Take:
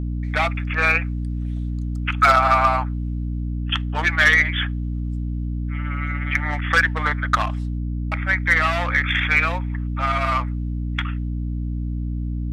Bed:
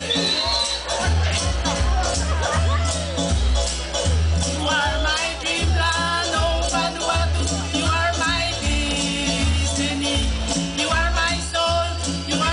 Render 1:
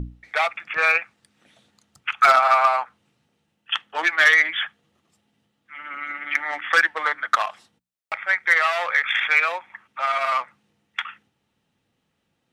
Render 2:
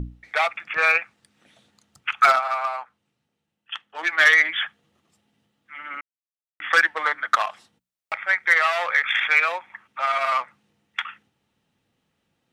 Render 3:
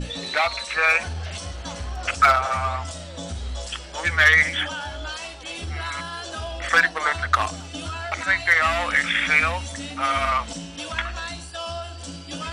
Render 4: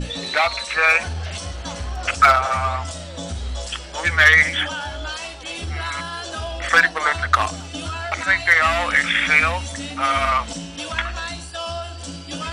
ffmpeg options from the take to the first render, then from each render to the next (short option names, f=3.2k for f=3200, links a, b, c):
-af "bandreject=f=60:t=h:w=6,bandreject=f=120:t=h:w=6,bandreject=f=180:t=h:w=6,bandreject=f=240:t=h:w=6,bandreject=f=300:t=h:w=6"
-filter_complex "[0:a]asplit=5[a][b][c][d][e];[a]atrim=end=2.43,asetpts=PTS-STARTPTS,afade=t=out:st=2.24:d=0.19:silence=0.375837[f];[b]atrim=start=2.43:end=3.98,asetpts=PTS-STARTPTS,volume=-8.5dB[g];[c]atrim=start=3.98:end=6.01,asetpts=PTS-STARTPTS,afade=t=in:d=0.19:silence=0.375837,afade=t=out:st=2.026:d=0.004:c=hsin[h];[d]atrim=start=6.01:end=6.6,asetpts=PTS-STARTPTS,volume=0[i];[e]atrim=start=6.6,asetpts=PTS-STARTPTS,afade=t=in:d=0.004:c=hsin[j];[f][g][h][i][j]concat=n=5:v=0:a=1"
-filter_complex "[1:a]volume=-11.5dB[a];[0:a][a]amix=inputs=2:normalize=0"
-af "volume=3dB"